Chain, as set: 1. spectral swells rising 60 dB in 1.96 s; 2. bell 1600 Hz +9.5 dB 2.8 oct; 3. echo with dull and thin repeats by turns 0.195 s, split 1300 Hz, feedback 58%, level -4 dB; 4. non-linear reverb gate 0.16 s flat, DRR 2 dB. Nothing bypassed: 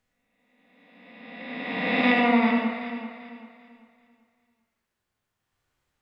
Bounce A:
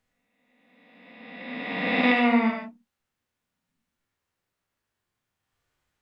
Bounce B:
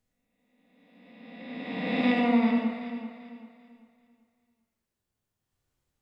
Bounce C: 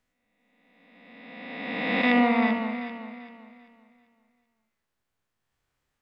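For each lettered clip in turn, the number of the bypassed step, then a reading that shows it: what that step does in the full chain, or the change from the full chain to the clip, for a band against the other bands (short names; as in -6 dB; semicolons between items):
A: 3, echo-to-direct 0.5 dB to -2.0 dB; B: 2, 125 Hz band +5.0 dB; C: 4, echo-to-direct 0.5 dB to -5.5 dB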